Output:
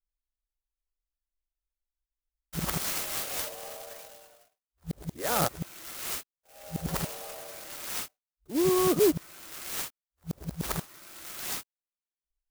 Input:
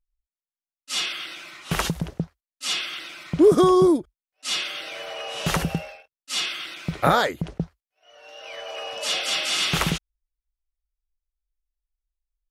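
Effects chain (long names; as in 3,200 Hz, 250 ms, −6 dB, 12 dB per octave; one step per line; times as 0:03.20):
played backwards from end to start
converter with an unsteady clock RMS 0.11 ms
level −8 dB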